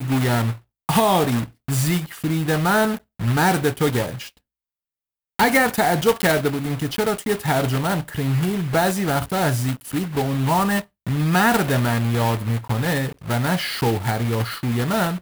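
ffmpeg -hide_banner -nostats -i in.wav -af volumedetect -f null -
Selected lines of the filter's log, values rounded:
mean_volume: -21.1 dB
max_volume: -6.0 dB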